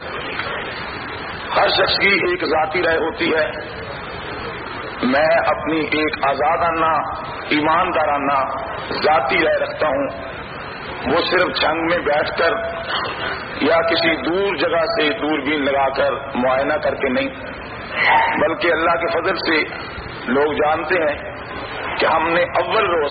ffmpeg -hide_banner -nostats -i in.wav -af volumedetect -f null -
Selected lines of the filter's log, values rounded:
mean_volume: -18.9 dB
max_volume: -4.6 dB